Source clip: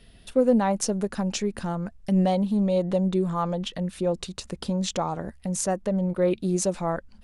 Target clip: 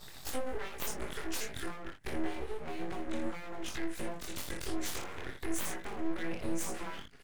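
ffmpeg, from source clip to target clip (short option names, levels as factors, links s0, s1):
-filter_complex "[0:a]afftfilt=real='re':imag='-im':win_size=2048:overlap=0.75,acrossover=split=1800[s0][s1];[s0]aeval=exprs='sgn(val(0))*max(abs(val(0))-0.00251,0)':c=same[s2];[s2][s1]amix=inputs=2:normalize=0,equalizer=f=500:t=o:w=1:g=-7,equalizer=f=2000:t=o:w=1:g=10,equalizer=f=4000:t=o:w=1:g=-10,acompressor=threshold=0.00447:ratio=6,highpass=49,equalizer=f=1700:w=3.4:g=7,asplit=2[s3][s4];[s4]adelay=20,volume=0.422[s5];[s3][s5]amix=inputs=2:normalize=0,asplit=2[s6][s7];[s7]aecho=0:1:31|61:0.422|0.447[s8];[s6][s8]amix=inputs=2:normalize=0,acrossover=split=340|3000[s9][s10][s11];[s10]acompressor=threshold=0.00158:ratio=4[s12];[s9][s12][s11]amix=inputs=3:normalize=0,aeval=exprs='abs(val(0))':c=same,volume=5.01"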